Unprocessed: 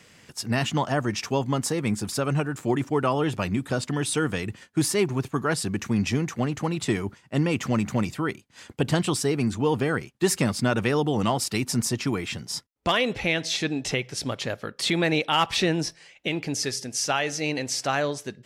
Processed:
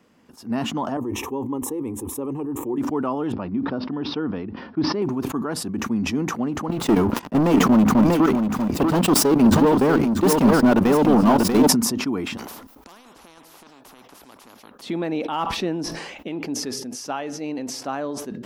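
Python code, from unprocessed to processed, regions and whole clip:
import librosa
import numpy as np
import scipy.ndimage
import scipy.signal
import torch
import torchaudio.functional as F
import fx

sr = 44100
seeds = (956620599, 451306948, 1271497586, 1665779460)

y = fx.chain(x, sr, fx.peak_eq(hz=2200.0, db=-11.0, octaves=2.1),
    fx.fixed_phaser(hz=970.0, stages=8),
    fx.env_flatten(amount_pct=50), at=(0.97, 2.78))
y = fx.chain(y, sr, fx.steep_lowpass(hz=5500.0, slope=96),
    fx.high_shelf(hz=2900.0, db=-9.5), at=(3.32, 5.02))
y = fx.chain(y, sr, fx.leveller(passes=5),
    fx.level_steps(step_db=14),
    fx.echo_single(ms=640, db=-7.0), at=(6.68, 11.68))
y = fx.chain(y, sr, fx.over_compress(threshold_db=-26.0, ratio=-0.5),
    fx.spectral_comp(ratio=10.0), at=(12.37, 14.82))
y = fx.graphic_eq(y, sr, hz=(125, 250, 1000, 2000, 4000, 8000), db=(-8, 11, 6, -7, -5, -10))
y = fx.sustainer(y, sr, db_per_s=38.0)
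y = y * 10.0 ** (-6.0 / 20.0)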